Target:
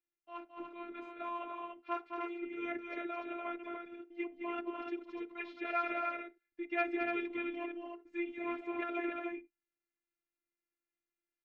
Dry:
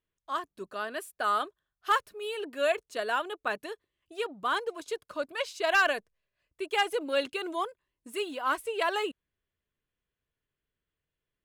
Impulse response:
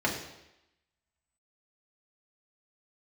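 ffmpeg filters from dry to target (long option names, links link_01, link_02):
-filter_complex "[0:a]highpass=140,equalizer=frequency=170:width_type=q:width=4:gain=6,equalizer=frequency=300:width_type=q:width=4:gain=7,equalizer=frequency=1200:width_type=q:width=4:gain=-9,equalizer=frequency=2500:width_type=q:width=4:gain=4,equalizer=frequency=3900:width_type=q:width=4:gain=-6,lowpass=frequency=4200:width=0.5412,lowpass=frequency=4200:width=1.3066,asetrate=37084,aresample=44100,atempo=1.18921,aecho=1:1:215.7|291.5:0.501|0.562,asplit=2[link_01][link_02];[1:a]atrim=start_sample=2205,afade=type=out:start_time=0.16:duration=0.01,atrim=end_sample=7497,asetrate=52920,aresample=44100[link_03];[link_02][link_03]afir=irnorm=-1:irlink=0,volume=-22.5dB[link_04];[link_01][link_04]amix=inputs=2:normalize=0,afftfilt=real='hypot(re,im)*cos(PI*b)':imag='0':win_size=512:overlap=0.75,volume=-6.5dB"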